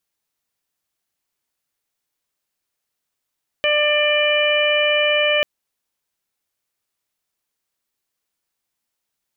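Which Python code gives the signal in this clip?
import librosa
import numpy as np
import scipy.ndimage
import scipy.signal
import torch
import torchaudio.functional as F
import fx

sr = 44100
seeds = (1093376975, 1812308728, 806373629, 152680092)

y = fx.additive_steady(sr, length_s=1.79, hz=595.0, level_db=-18, upper_db=(-11.5, -6, -2.0, -3))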